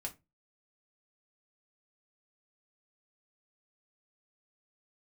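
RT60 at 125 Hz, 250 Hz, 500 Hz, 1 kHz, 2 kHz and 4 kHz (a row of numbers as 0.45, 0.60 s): 0.35, 0.30, 0.25, 0.20, 0.20, 0.15 s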